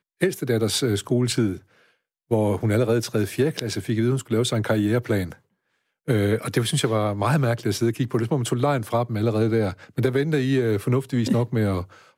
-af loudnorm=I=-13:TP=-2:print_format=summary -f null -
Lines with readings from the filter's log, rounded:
Input Integrated:    -23.2 LUFS
Input True Peak:      -6.1 dBTP
Input LRA:             1.3 LU
Input Threshold:     -33.4 LUFS